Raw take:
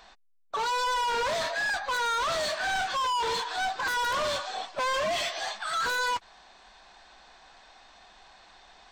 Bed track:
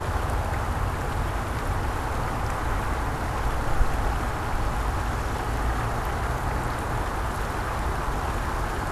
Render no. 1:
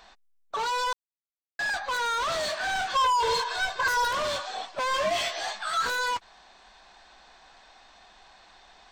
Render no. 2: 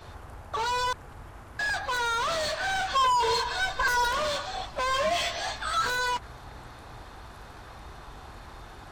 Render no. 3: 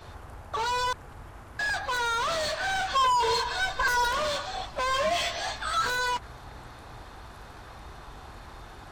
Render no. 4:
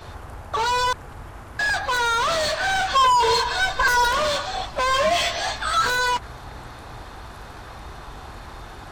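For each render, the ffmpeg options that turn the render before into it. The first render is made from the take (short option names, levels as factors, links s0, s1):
-filter_complex "[0:a]asettb=1/sr,asplit=3[s0][s1][s2];[s0]atrim=end=2.954[s3];[s1]atrim=start=2.95:end=4.08,asetpts=PTS-STARTPTS,afade=t=in:d=0.004:c=qsin,afade=t=out:st=1.126:d=0.004:c=qsin,aecho=1:1:1.9:0.9,atrim=end_sample=49833[s4];[s2]atrim=start=4.076[s5];[s3][s4]acrossfade=d=0.004:c1=hsin:c2=qsin[s6];[s6][s5]acrossfade=d=0.004:c1=qsin:c2=hsin,asettb=1/sr,asplit=3[s7][s8][s9];[s7]atrim=end=4.894[s10];[s8]atrim=start=4.89:end=5.9,asetpts=PTS-STARTPTS,afade=t=in:d=0.004:c=qsin,afade=t=out:st=1.006:d=0.004:c=qsin,asplit=2[s11][s12];[s12]adelay=16,volume=0.562[s13];[s11][s13]amix=inputs=2:normalize=0,atrim=end_sample=44541[s14];[s9]atrim=start=5.896[s15];[s10][s14]acrossfade=d=0.004:c1=hsin:c2=qsin[s16];[s16][s15]acrossfade=d=0.004:c1=qsin:c2=hsin,asplit=3[s17][s18][s19];[s17]atrim=end=0.93,asetpts=PTS-STARTPTS,afade=t=out:st=0.926:d=0.004:c=hsin[s20];[s18]atrim=start=0.93:end=1.59,asetpts=PTS-STARTPTS,volume=0[s21];[s19]atrim=start=1.59,asetpts=PTS-STARTPTS,afade=t=in:d=0.004:c=hsin[s22];[s20][s21][s22]concat=n=3:v=0:a=1"
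-filter_complex "[1:a]volume=0.126[s0];[0:a][s0]amix=inputs=2:normalize=0"
-af anull
-af "volume=2.11"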